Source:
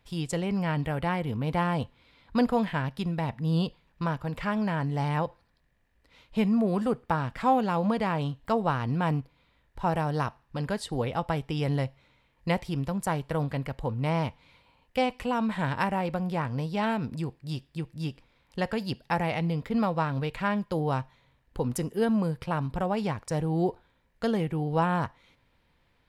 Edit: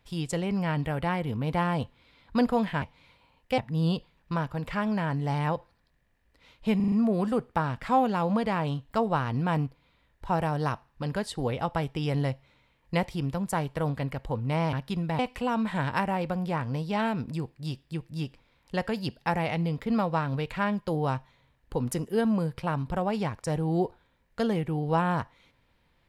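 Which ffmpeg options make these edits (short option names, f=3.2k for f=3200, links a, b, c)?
-filter_complex "[0:a]asplit=9[a][b][c][d][e][f][g][h][i];[a]atrim=end=2.822[j];[b]atrim=start=14.268:end=15.032[k];[c]atrim=start=3.278:end=6.502[l];[d]atrim=start=6.458:end=6.502[m];[e]atrim=start=6.458:end=6.502[n];[f]atrim=start=6.458:end=6.502[o];[g]atrim=start=6.458:end=14.272[p];[h]atrim=start=2.818:end=3.282[q];[i]atrim=start=15.028[r];[j][k]acrossfade=d=0.004:c1=hsin:c2=hsin[s];[s][l]acrossfade=d=0.004:c1=hsin:c2=hsin[t];[t][m]acrossfade=d=0.004:c1=hsin:c2=hsin[u];[u][n]acrossfade=d=0.004:c1=hsin:c2=hsin[v];[v][o]acrossfade=d=0.004:c1=hsin:c2=hsin[w];[w][p]acrossfade=d=0.004:c1=hsin:c2=hsin[x];[x][q]acrossfade=d=0.004:c1=hsin:c2=hsin[y];[y][r]acrossfade=d=0.004:c1=hsin:c2=hsin"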